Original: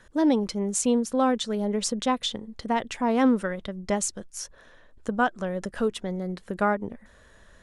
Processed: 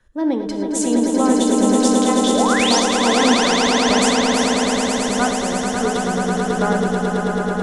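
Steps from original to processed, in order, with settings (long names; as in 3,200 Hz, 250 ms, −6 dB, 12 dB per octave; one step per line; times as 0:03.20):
in parallel at −1 dB: downward compressor, threshold −34 dBFS, peak gain reduction 16.5 dB
on the sum: sound drawn into the spectrogram rise, 0:02.28–0:02.80, 360–6,900 Hz −22 dBFS
echo that builds up and dies away 109 ms, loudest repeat 8, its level −5.5 dB
convolution reverb, pre-delay 3 ms, DRR 7 dB
multiband upward and downward expander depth 40%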